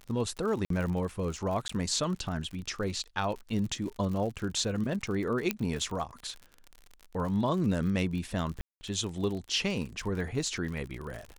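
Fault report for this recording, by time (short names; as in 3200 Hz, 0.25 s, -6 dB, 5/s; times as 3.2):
crackle 52/s -36 dBFS
0.65–0.7 gap 53 ms
1.68–1.69 gap 14 ms
5.51 pop -12 dBFS
8.61–8.81 gap 0.2 s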